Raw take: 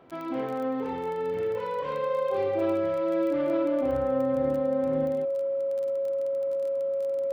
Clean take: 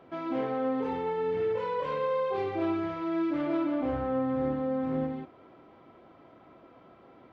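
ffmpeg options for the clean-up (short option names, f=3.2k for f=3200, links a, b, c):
-af "adeclick=t=4,bandreject=f=550:w=30"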